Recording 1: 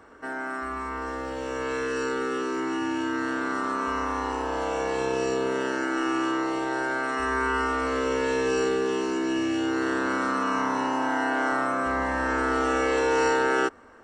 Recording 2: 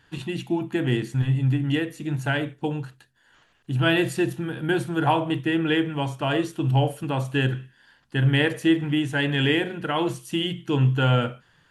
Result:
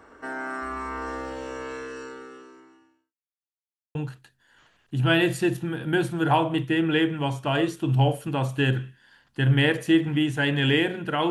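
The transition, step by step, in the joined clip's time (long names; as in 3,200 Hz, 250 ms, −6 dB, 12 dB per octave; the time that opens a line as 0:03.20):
recording 1
0:01.15–0:03.15: fade out quadratic
0:03.15–0:03.95: silence
0:03.95: continue with recording 2 from 0:02.71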